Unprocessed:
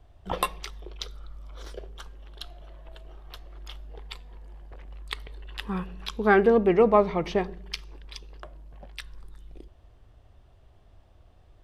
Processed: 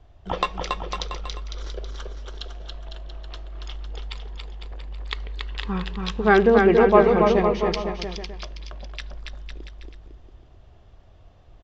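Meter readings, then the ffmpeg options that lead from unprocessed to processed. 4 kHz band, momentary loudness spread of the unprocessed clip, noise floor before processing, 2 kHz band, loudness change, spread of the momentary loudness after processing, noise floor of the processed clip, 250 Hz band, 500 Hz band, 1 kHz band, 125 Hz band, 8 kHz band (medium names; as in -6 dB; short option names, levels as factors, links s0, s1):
+5.0 dB, 24 LU, -56 dBFS, +5.0 dB, +4.0 dB, 23 LU, -51 dBFS, +5.0 dB, +5.0 dB, +5.0 dB, +6.5 dB, no reading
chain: -filter_complex "[0:a]asplit=2[s0][s1];[s1]aecho=0:1:280|504|683.2|826.6|941.2:0.631|0.398|0.251|0.158|0.1[s2];[s0][s2]amix=inputs=2:normalize=0,aresample=16000,aresample=44100,volume=1.41"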